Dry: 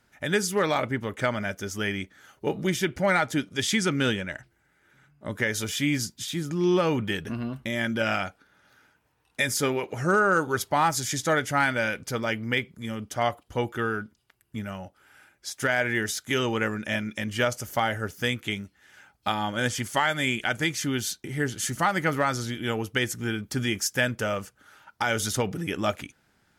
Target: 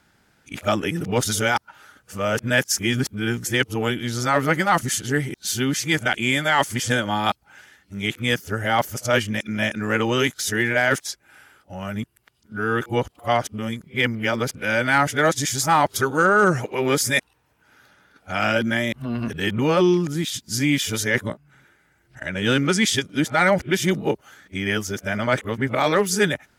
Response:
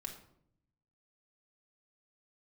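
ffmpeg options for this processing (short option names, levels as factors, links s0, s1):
-af "areverse,acontrast=32"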